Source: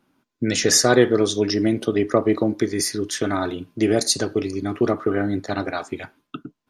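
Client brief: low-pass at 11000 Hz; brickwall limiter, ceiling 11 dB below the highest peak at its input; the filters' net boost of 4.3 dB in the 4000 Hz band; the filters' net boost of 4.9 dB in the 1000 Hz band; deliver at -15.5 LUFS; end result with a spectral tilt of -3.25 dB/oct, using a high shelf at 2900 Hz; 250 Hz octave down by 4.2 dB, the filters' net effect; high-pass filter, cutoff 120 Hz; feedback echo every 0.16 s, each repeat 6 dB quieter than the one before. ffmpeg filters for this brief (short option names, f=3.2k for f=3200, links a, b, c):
-af "highpass=120,lowpass=11k,equalizer=f=250:t=o:g=-6.5,equalizer=f=1k:t=o:g=7.5,highshelf=f=2.9k:g=-4,equalizer=f=4k:t=o:g=9,alimiter=limit=-12.5dB:level=0:latency=1,aecho=1:1:160|320|480|640|800|960:0.501|0.251|0.125|0.0626|0.0313|0.0157,volume=7.5dB"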